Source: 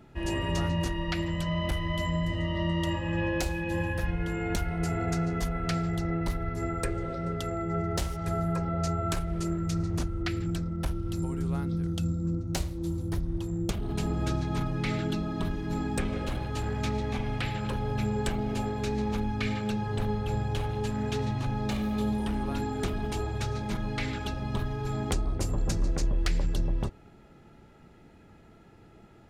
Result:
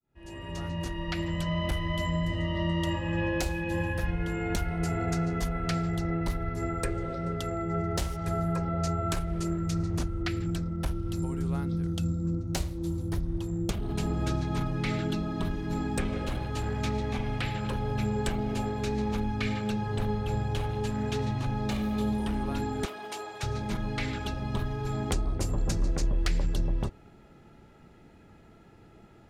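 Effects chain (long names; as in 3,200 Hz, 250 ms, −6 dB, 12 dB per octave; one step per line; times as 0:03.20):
fade in at the beginning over 1.37 s
0:22.85–0:23.43: high-pass filter 540 Hz 12 dB per octave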